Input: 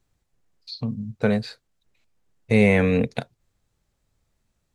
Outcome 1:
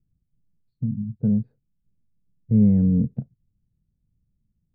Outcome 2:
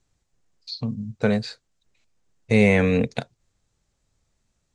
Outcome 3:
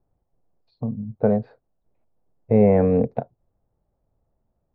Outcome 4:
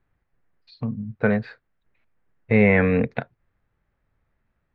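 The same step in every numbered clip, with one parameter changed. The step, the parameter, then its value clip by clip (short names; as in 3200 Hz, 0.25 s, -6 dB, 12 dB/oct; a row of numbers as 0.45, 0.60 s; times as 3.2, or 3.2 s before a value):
synth low-pass, frequency: 180, 7200, 720, 1800 Hz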